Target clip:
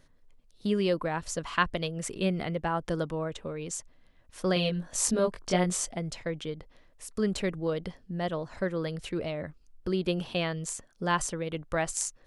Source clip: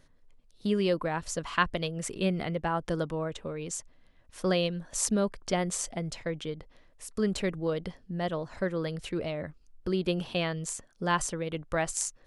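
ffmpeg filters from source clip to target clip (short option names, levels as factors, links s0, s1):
-filter_complex "[0:a]asettb=1/sr,asplit=3[s0][s1][s2];[s0]atrim=end=4.544[s3];[s1]atrim=start=4.54:end=5.85,asetpts=PTS-STARTPTS,afade=t=in:d=0.004:c=qsin,afade=t=out:st=1.306:d=0.004:c=qsin,asplit=2[s4][s5];[s5]adelay=22,volume=0.75[s6];[s4][s6]amix=inputs=2:normalize=0,atrim=end_sample=57771[s7];[s2]atrim=start=5.846[s8];[s3][s7]acrossfade=d=0.004:c1=hsin:c2=qsin[s9];[s9][s8]acrossfade=d=0.004:c1=qsin:c2=hsin"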